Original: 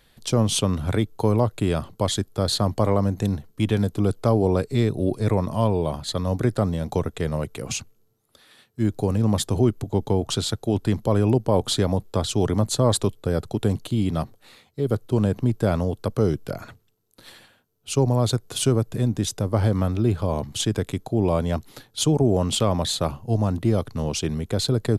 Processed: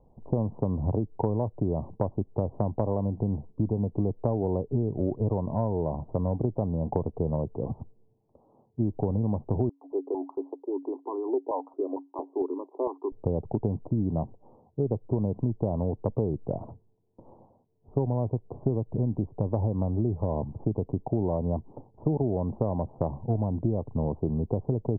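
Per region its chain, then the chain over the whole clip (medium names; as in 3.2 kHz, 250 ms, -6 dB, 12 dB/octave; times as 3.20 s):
9.69–13.12 s: rippled Chebyshev high-pass 270 Hz, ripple 9 dB + step-sequenced notch 4.4 Hz 370–1700 Hz
whole clip: steep low-pass 980 Hz 72 dB/octave; compression, threshold -25 dBFS; trim +2 dB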